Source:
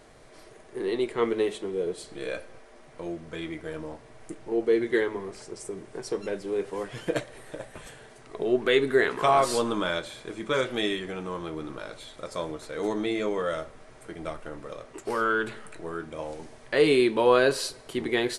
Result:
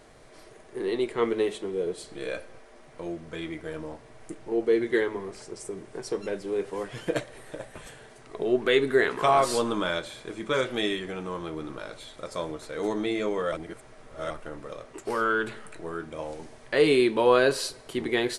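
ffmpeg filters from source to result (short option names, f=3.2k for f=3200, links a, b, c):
-filter_complex "[0:a]asplit=3[a][b][c];[a]atrim=end=13.522[d];[b]atrim=start=13.518:end=14.302,asetpts=PTS-STARTPTS,areverse[e];[c]atrim=start=14.298[f];[d][e]acrossfade=d=0.004:c1=hsin:c2=hsin[g];[g][f]acrossfade=d=0.004:c1=hsin:c2=hsin"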